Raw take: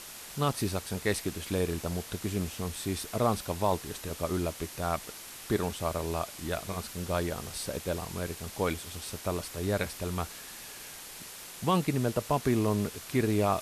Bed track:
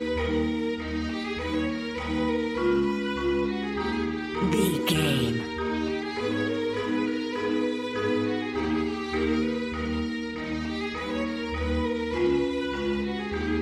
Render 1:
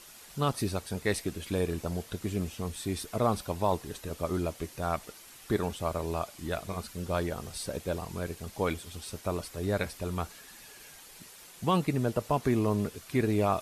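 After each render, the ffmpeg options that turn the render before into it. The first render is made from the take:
-af "afftdn=nr=8:nf=-45"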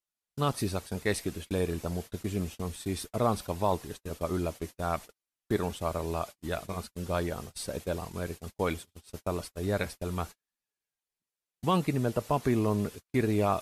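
-af "agate=range=0.00708:threshold=0.0112:ratio=16:detection=peak"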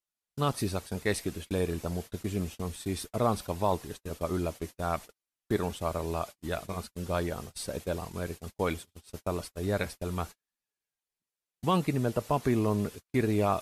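-af anull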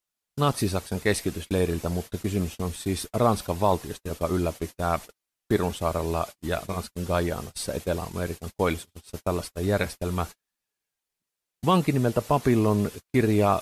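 -af "volume=1.88"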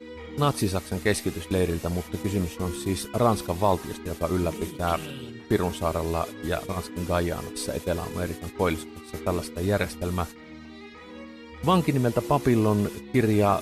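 -filter_complex "[1:a]volume=0.224[s0];[0:a][s0]amix=inputs=2:normalize=0"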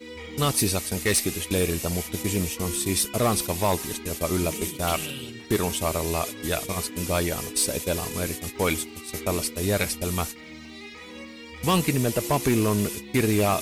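-af "aexciter=amount=2.1:drive=6.6:freq=2100,asoftclip=type=hard:threshold=0.168"

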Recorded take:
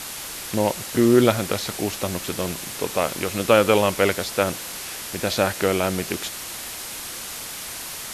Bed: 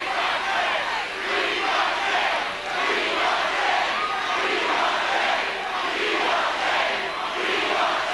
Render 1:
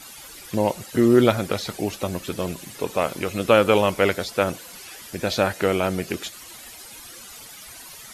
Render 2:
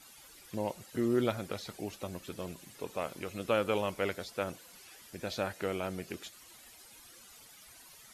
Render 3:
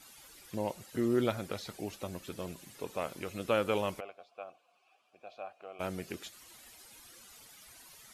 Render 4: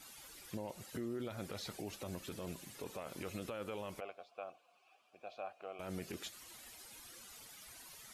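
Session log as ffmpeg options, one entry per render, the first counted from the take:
-af "afftdn=nr=13:nf=-34"
-af "volume=0.211"
-filter_complex "[0:a]asplit=3[s0][s1][s2];[s0]afade=t=out:st=3.99:d=0.02[s3];[s1]asplit=3[s4][s5][s6];[s4]bandpass=f=730:t=q:w=8,volume=1[s7];[s5]bandpass=f=1090:t=q:w=8,volume=0.501[s8];[s6]bandpass=f=2440:t=q:w=8,volume=0.355[s9];[s7][s8][s9]amix=inputs=3:normalize=0,afade=t=in:st=3.99:d=0.02,afade=t=out:st=5.79:d=0.02[s10];[s2]afade=t=in:st=5.79:d=0.02[s11];[s3][s10][s11]amix=inputs=3:normalize=0"
-af "acompressor=threshold=0.0178:ratio=6,alimiter=level_in=2.82:limit=0.0631:level=0:latency=1:release=17,volume=0.355"

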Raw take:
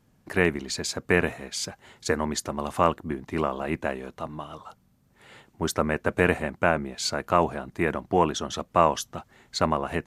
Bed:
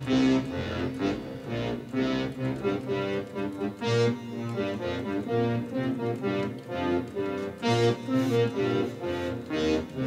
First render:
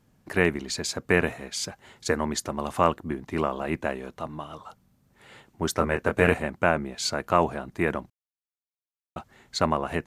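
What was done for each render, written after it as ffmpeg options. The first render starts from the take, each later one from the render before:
-filter_complex "[0:a]asettb=1/sr,asplit=3[s0][s1][s2];[s0]atrim=end=5.754[s3];[s1]atrim=start=5.75:end=6.34,asetpts=PTS-STARTPTS,afade=t=in:d=0.004:c=qsin,afade=t=out:st=0.586:d=0.004:c=qsin,asplit=2[s4][s5];[s5]adelay=24,volume=0.531[s6];[s4][s6]amix=inputs=2:normalize=0,atrim=end_sample=26019[s7];[s2]atrim=start=6.336[s8];[s3][s7]acrossfade=d=0.004:c1=hsin:c2=qsin[s9];[s9][s8]acrossfade=d=0.004:c1=qsin:c2=hsin,asplit=3[s10][s11][s12];[s10]atrim=end=8.1,asetpts=PTS-STARTPTS,afade=t=out:st=8.096:d=0.004:c=hsin[s13];[s11]atrim=start=8.1:end=9.16,asetpts=PTS-STARTPTS,volume=0[s14];[s12]atrim=start=9.16,asetpts=PTS-STARTPTS,afade=t=in:d=0.004:c=hsin[s15];[s13][s14][s15]concat=n=3:v=0:a=1"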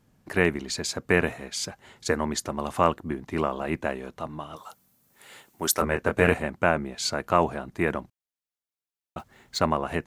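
-filter_complex "[0:a]asettb=1/sr,asplit=3[s0][s1][s2];[s0]atrim=end=4.564[s3];[s1]atrim=start=4.56:end=5.82,asetpts=PTS-STARTPTS,afade=t=in:d=0.004:c=qsin,afade=t=out:st=1.256:d=0.004:c=qsin,aemphasis=mode=production:type=bsi[s4];[s2]atrim=start=5.816[s5];[s3][s4]acrossfade=d=0.004:c1=hsin:c2=qsin[s6];[s6][s5]acrossfade=d=0.004:c1=qsin:c2=hsin,asplit=3[s7][s8][s9];[s7]afade=t=out:st=9.18:d=0.02[s10];[s8]acrusher=bits=4:mode=log:mix=0:aa=0.000001,afade=t=in:st=9.18:d=0.02,afade=t=out:st=9.58:d=0.02[s11];[s9]afade=t=in:st=9.58:d=0.02[s12];[s10][s11][s12]amix=inputs=3:normalize=0"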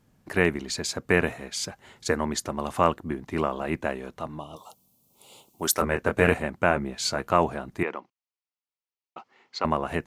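-filter_complex "[0:a]asettb=1/sr,asplit=3[s0][s1][s2];[s0]atrim=end=4.394[s3];[s1]atrim=start=4.39:end=5.63,asetpts=PTS-STARTPTS,afade=t=in:d=0.004:c=qsin,afade=t=out:st=1.236:d=0.004:c=qsin,asuperstop=centerf=1700:order=4:qfactor=1[s4];[s2]atrim=start=5.626[s5];[s3][s4]acrossfade=d=0.004:c1=hsin:c2=qsin[s6];[s6][s5]acrossfade=d=0.004:c1=qsin:c2=hsin,asettb=1/sr,asplit=3[s7][s8][s9];[s7]atrim=end=6.694[s10];[s8]atrim=start=6.69:end=7.28,asetpts=PTS-STARTPTS,afade=t=in:d=0.004:c=qsin,afade=t=out:st=0.586:d=0.004:c=qsin,asplit=2[s11][s12];[s12]adelay=15,volume=0.376[s13];[s11][s13]amix=inputs=2:normalize=0,atrim=end_sample=26019[s14];[s9]atrim=start=7.276[s15];[s10][s14]acrossfade=d=0.004:c1=hsin:c2=qsin[s16];[s16][s15]acrossfade=d=0.004:c1=qsin:c2=hsin,asettb=1/sr,asplit=3[s17][s18][s19];[s17]atrim=end=7.834[s20];[s18]atrim=start=7.83:end=9.65,asetpts=PTS-STARTPTS,afade=t=in:d=0.004:c=qsin,afade=t=out:st=1.816:d=0.004:c=qsin,highpass=460,equalizer=f=620:t=q:w=4:g=-8,equalizer=f=1600:t=q:w=4:g=-9,equalizer=f=3700:t=q:w=4:g=-8,lowpass=f=5000:w=0.5412,lowpass=f=5000:w=1.3066[s21];[s19]atrim=start=9.646[s22];[s20][s21]acrossfade=d=0.004:c1=hsin:c2=qsin[s23];[s23][s22]acrossfade=d=0.004:c1=qsin:c2=hsin"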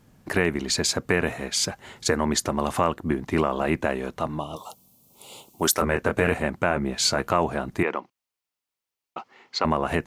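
-filter_complex "[0:a]acompressor=threshold=0.0562:ratio=2,asplit=2[s0][s1];[s1]alimiter=limit=0.119:level=0:latency=1:release=24,volume=1.26[s2];[s0][s2]amix=inputs=2:normalize=0"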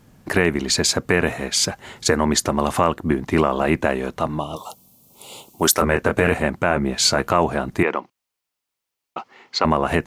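-af "volume=1.78,alimiter=limit=0.708:level=0:latency=1"

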